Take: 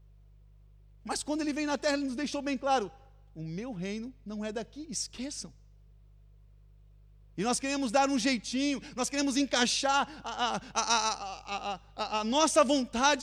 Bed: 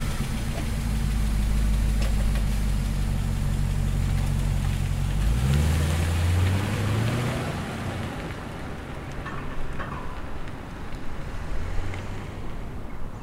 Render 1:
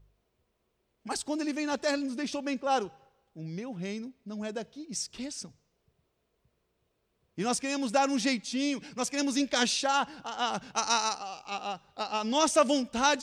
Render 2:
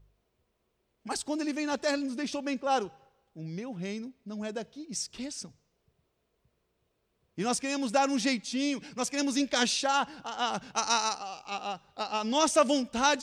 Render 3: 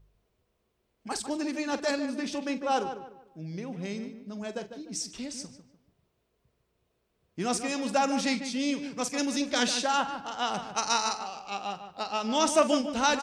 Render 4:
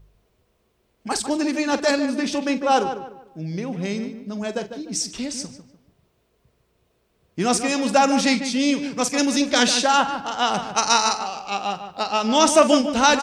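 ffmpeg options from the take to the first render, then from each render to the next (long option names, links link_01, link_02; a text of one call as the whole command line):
ffmpeg -i in.wav -af "bandreject=frequency=50:width_type=h:width=4,bandreject=frequency=100:width_type=h:width=4,bandreject=frequency=150:width_type=h:width=4" out.wav
ffmpeg -i in.wav -af anull out.wav
ffmpeg -i in.wav -filter_complex "[0:a]asplit=2[link_01][link_02];[link_02]adelay=45,volume=-13dB[link_03];[link_01][link_03]amix=inputs=2:normalize=0,asplit=2[link_04][link_05];[link_05]adelay=149,lowpass=frequency=2300:poles=1,volume=-9dB,asplit=2[link_06][link_07];[link_07]adelay=149,lowpass=frequency=2300:poles=1,volume=0.35,asplit=2[link_08][link_09];[link_09]adelay=149,lowpass=frequency=2300:poles=1,volume=0.35,asplit=2[link_10][link_11];[link_11]adelay=149,lowpass=frequency=2300:poles=1,volume=0.35[link_12];[link_04][link_06][link_08][link_10][link_12]amix=inputs=5:normalize=0" out.wav
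ffmpeg -i in.wav -af "volume=9dB,alimiter=limit=-3dB:level=0:latency=1" out.wav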